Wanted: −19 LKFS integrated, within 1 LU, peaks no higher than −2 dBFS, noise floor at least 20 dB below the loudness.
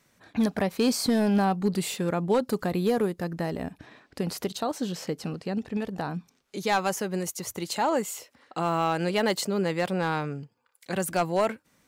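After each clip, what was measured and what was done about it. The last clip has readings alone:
share of clipped samples 0.4%; peaks flattened at −16.0 dBFS; integrated loudness −28.0 LKFS; sample peak −16.0 dBFS; target loudness −19.0 LKFS
→ clipped peaks rebuilt −16 dBFS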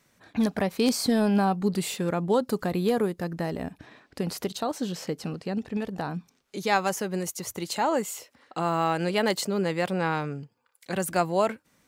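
share of clipped samples 0.0%; integrated loudness −27.5 LKFS; sample peak −7.0 dBFS; target loudness −19.0 LKFS
→ level +8.5 dB
brickwall limiter −2 dBFS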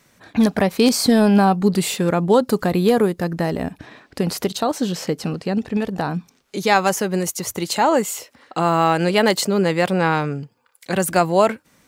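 integrated loudness −19.0 LKFS; sample peak −2.0 dBFS; background noise floor −61 dBFS

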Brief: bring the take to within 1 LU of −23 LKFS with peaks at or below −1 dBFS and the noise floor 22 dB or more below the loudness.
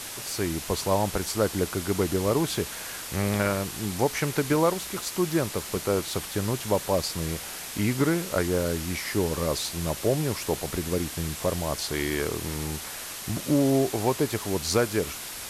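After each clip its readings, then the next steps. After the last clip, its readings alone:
background noise floor −38 dBFS; target noise floor −49 dBFS; integrated loudness −27.0 LKFS; sample peak −10.0 dBFS; target loudness −23.0 LKFS
→ broadband denoise 11 dB, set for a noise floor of −38 dBFS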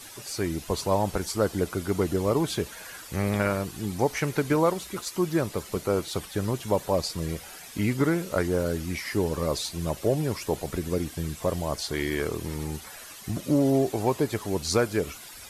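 background noise floor −44 dBFS; target noise floor −50 dBFS
→ broadband denoise 6 dB, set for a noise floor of −44 dBFS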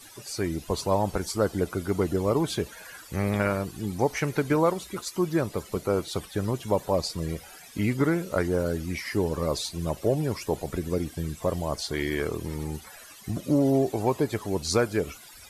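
background noise floor −48 dBFS; target noise floor −50 dBFS
→ broadband denoise 6 dB, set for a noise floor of −48 dBFS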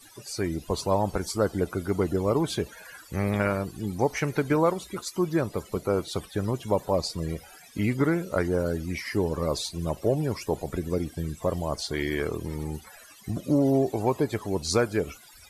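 background noise floor −51 dBFS; integrated loudness −28.0 LKFS; sample peak −10.0 dBFS; target loudness −23.0 LKFS
→ level +5 dB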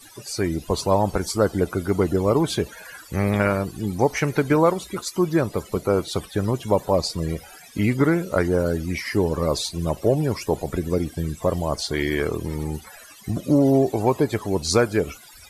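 integrated loudness −23.0 LKFS; sample peak −5.0 dBFS; background noise floor −46 dBFS

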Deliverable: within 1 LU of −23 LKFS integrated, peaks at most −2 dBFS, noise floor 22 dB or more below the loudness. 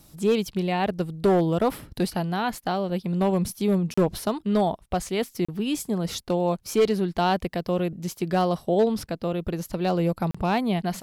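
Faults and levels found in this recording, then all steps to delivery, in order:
share of clipped samples 0.7%; peaks flattened at −14.0 dBFS; number of dropouts 3; longest dropout 35 ms; integrated loudness −25.5 LKFS; sample peak −14.0 dBFS; target loudness −23.0 LKFS
→ clipped peaks rebuilt −14 dBFS
repair the gap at 0:03.94/0:05.45/0:10.31, 35 ms
level +2.5 dB

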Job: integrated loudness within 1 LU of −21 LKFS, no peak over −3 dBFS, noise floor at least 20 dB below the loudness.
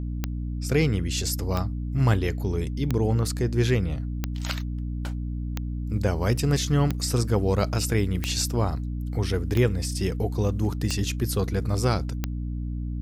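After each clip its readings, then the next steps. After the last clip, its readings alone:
number of clicks 10; mains hum 60 Hz; hum harmonics up to 300 Hz; level of the hum −27 dBFS; integrated loudness −26.0 LKFS; sample peak −10.5 dBFS; target loudness −21.0 LKFS
→ click removal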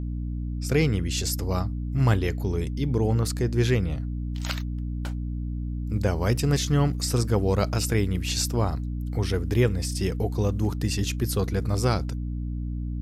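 number of clicks 0; mains hum 60 Hz; hum harmonics up to 300 Hz; level of the hum −27 dBFS
→ hum removal 60 Hz, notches 5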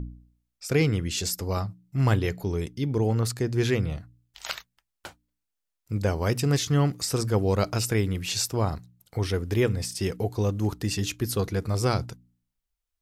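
mains hum none found; integrated loudness −27.0 LKFS; sample peak −11.5 dBFS; target loudness −21.0 LKFS
→ level +6 dB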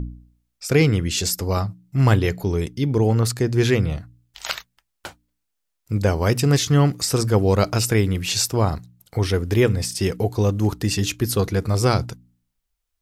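integrated loudness −21.0 LKFS; sample peak −5.5 dBFS; background noise floor −77 dBFS

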